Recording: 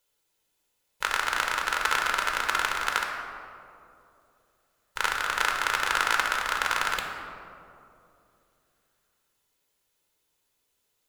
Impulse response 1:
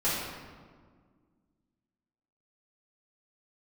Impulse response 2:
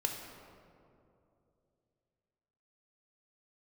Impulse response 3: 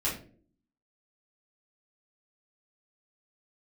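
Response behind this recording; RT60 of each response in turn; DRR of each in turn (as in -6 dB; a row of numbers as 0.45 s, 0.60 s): 2; 1.7 s, 2.7 s, no single decay rate; -12.0 dB, 1.5 dB, -8.0 dB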